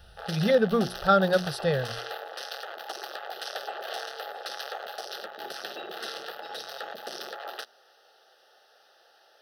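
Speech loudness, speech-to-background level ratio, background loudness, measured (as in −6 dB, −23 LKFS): −25.0 LKFS, 12.5 dB, −37.5 LKFS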